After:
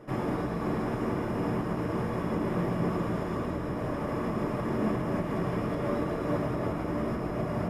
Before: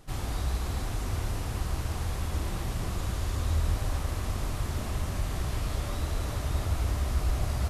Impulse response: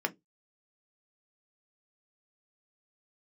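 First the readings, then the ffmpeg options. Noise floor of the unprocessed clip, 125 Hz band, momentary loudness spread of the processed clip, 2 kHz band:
−35 dBFS, −3.0 dB, 3 LU, +1.5 dB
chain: -filter_complex "[0:a]tiltshelf=frequency=1500:gain=9,acompressor=threshold=-20dB:ratio=3[link_01];[1:a]atrim=start_sample=2205[link_02];[link_01][link_02]afir=irnorm=-1:irlink=0,volume=-1.5dB"

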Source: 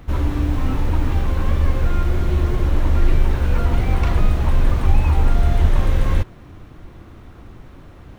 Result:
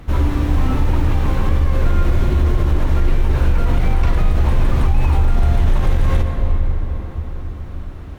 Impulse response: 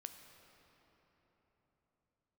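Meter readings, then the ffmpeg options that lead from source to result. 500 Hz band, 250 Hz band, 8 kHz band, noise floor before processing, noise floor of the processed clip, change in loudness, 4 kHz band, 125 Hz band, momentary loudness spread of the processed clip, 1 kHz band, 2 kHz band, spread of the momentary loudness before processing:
+2.0 dB, +2.0 dB, can't be measured, −42 dBFS, −30 dBFS, +1.5 dB, +1.5 dB, +2.5 dB, 10 LU, +2.0 dB, +1.5 dB, 3 LU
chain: -filter_complex "[1:a]atrim=start_sample=2205,asetrate=36603,aresample=44100[link_01];[0:a][link_01]afir=irnorm=-1:irlink=0,alimiter=level_in=13.5dB:limit=-1dB:release=50:level=0:latency=1,volume=-5.5dB"

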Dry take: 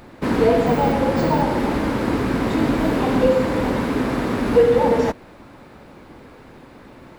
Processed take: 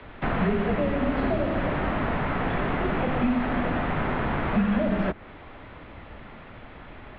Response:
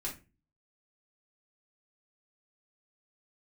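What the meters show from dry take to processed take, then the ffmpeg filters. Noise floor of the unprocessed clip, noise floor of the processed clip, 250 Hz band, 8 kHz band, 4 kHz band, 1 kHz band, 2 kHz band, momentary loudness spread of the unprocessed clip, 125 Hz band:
−45 dBFS, −45 dBFS, −6.0 dB, below −35 dB, −7.5 dB, −6.0 dB, −2.0 dB, 6 LU, −3.5 dB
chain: -filter_complex "[0:a]highshelf=frequency=2200:gain=9.5,highpass=frequency=170:width_type=q:width=0.5412,highpass=frequency=170:width_type=q:width=1.307,lowpass=frequency=3400:width_type=q:width=0.5176,lowpass=frequency=3400:width_type=q:width=0.7071,lowpass=frequency=3400:width_type=q:width=1.932,afreqshift=-270,acrossover=split=120|280|2300[link_01][link_02][link_03][link_04];[link_01]acompressor=threshold=-32dB:ratio=4[link_05];[link_02]acompressor=threshold=-29dB:ratio=4[link_06];[link_03]acompressor=threshold=-26dB:ratio=4[link_07];[link_04]acompressor=threshold=-49dB:ratio=4[link_08];[link_05][link_06][link_07][link_08]amix=inputs=4:normalize=0"

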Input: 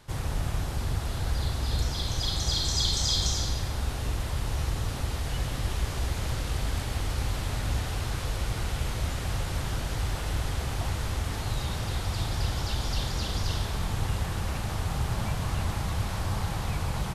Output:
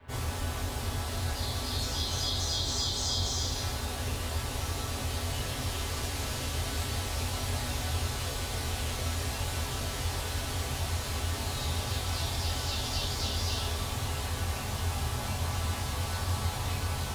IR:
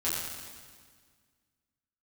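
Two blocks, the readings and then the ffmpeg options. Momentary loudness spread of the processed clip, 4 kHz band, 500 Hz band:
4 LU, −0.5 dB, −0.5 dB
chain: -filter_complex "[0:a]acrossover=split=260|1200|2700[link_01][link_02][link_03][link_04];[link_01]acompressor=threshold=-40dB:ratio=4[link_05];[link_02]acompressor=threshold=-45dB:ratio=4[link_06];[link_03]acompressor=threshold=-53dB:ratio=4[link_07];[link_04]acompressor=threshold=-36dB:ratio=4[link_08];[link_05][link_06][link_07][link_08]amix=inputs=4:normalize=0,acrossover=split=380|660|2800[link_09][link_10][link_11][link_12];[link_12]aeval=exprs='sgn(val(0))*max(abs(val(0))-0.00133,0)':channel_layout=same[link_13];[link_09][link_10][link_11][link_13]amix=inputs=4:normalize=0[link_14];[1:a]atrim=start_sample=2205,atrim=end_sample=3528[link_15];[link_14][link_15]afir=irnorm=-1:irlink=0"

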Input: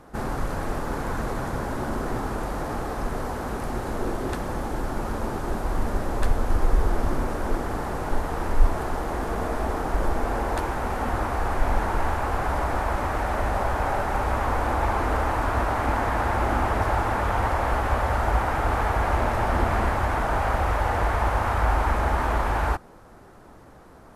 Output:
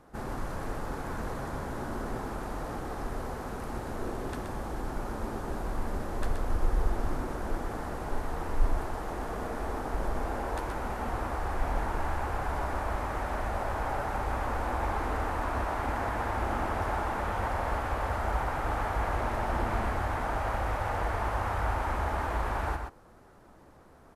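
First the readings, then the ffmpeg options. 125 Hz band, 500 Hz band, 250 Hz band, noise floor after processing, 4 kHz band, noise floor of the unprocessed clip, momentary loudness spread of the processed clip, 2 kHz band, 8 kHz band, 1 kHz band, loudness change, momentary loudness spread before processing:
−7.5 dB, −7.0 dB, −7.0 dB, −55 dBFS, −7.0 dB, −48 dBFS, 6 LU, −7.0 dB, −7.0 dB, −7.0 dB, −7.0 dB, 6 LU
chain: -af "aecho=1:1:125:0.501,volume=-8dB"

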